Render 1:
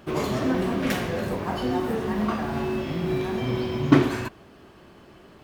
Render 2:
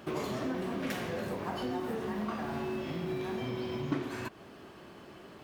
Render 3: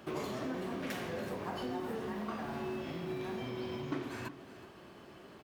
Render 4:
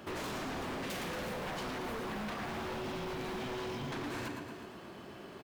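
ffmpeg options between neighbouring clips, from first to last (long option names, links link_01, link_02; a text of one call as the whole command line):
ffmpeg -i in.wav -af "acompressor=threshold=-34dB:ratio=3,highpass=frequency=130:poles=1" out.wav
ffmpeg -i in.wav -filter_complex "[0:a]aecho=1:1:372:0.168,acrossover=split=260[link_01][link_02];[link_01]alimiter=level_in=12.5dB:limit=-24dB:level=0:latency=1,volume=-12.5dB[link_03];[link_03][link_02]amix=inputs=2:normalize=0,volume=-3dB" out.wav
ffmpeg -i in.wav -af "aecho=1:1:115|230|345|460|575|690|805:0.473|0.251|0.133|0.0704|0.0373|0.0198|0.0105,aeval=exprs='0.0133*(abs(mod(val(0)/0.0133+3,4)-2)-1)':channel_layout=same,volume=3.5dB" out.wav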